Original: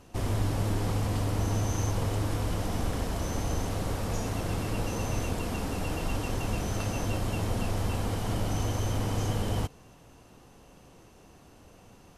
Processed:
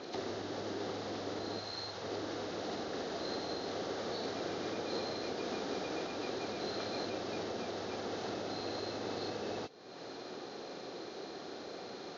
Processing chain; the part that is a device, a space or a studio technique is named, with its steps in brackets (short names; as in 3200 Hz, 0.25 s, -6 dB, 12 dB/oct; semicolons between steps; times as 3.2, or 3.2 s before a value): hearing aid with frequency lowering (nonlinear frequency compression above 1900 Hz 1.5:1; compressor 3:1, threshold -48 dBFS, peak gain reduction 18 dB; speaker cabinet 350–5700 Hz, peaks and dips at 380 Hz +6 dB, 1000 Hz -8 dB, 2500 Hz -7 dB, 4100 Hz +3 dB); 1.59–2.04 bell 290 Hz -9.5 dB 1.7 oct; gain +13 dB